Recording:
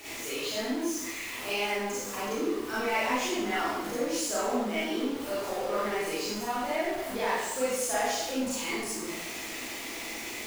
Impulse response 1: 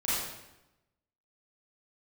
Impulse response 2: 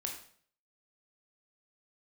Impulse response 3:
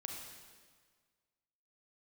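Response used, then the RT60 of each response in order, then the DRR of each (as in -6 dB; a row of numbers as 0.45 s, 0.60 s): 1; 0.95 s, 0.55 s, 1.6 s; -10.5 dB, 1.0 dB, 0.5 dB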